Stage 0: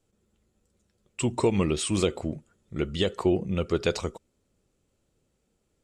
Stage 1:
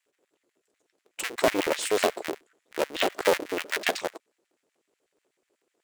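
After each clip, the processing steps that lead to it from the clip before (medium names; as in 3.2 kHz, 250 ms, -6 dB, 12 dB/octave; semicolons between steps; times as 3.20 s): cycle switcher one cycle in 2, inverted; LFO high-pass square 8.1 Hz 380–1900 Hz; trim -1.5 dB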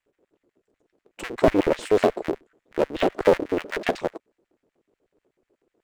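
tilt EQ -4 dB/octave; trim +1.5 dB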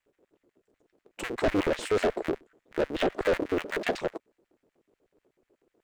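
saturation -20 dBFS, distortion -7 dB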